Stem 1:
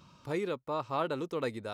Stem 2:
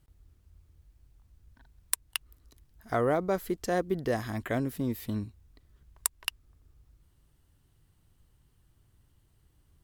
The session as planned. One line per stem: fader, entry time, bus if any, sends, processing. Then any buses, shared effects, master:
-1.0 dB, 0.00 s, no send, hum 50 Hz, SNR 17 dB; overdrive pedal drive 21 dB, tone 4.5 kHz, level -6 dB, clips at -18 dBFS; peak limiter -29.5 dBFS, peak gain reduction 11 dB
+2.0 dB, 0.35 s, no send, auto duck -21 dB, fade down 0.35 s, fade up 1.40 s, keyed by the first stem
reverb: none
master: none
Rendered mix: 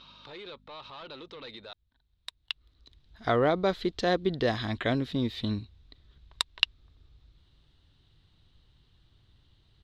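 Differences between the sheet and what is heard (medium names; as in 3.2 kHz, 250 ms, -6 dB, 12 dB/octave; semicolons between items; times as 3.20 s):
stem 1 -1.0 dB -> -10.5 dB; master: extra resonant low-pass 3.8 kHz, resonance Q 5.7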